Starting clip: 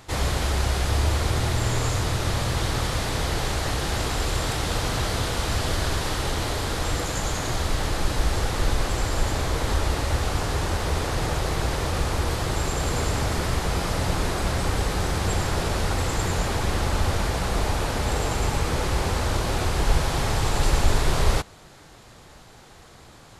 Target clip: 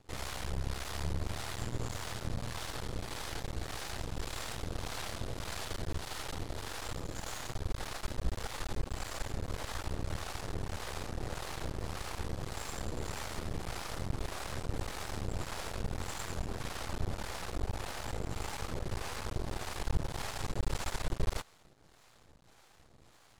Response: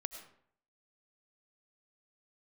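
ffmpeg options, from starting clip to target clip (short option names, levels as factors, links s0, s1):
-filter_complex "[0:a]acrossover=split=540[s0][s1];[s0]aeval=exprs='val(0)*(1-0.7/2+0.7/2*cos(2*PI*1.7*n/s))':c=same[s2];[s1]aeval=exprs='val(0)*(1-0.7/2-0.7/2*cos(2*PI*1.7*n/s))':c=same[s3];[s2][s3]amix=inputs=2:normalize=0,aeval=exprs='max(val(0),0)':c=same,volume=0.447"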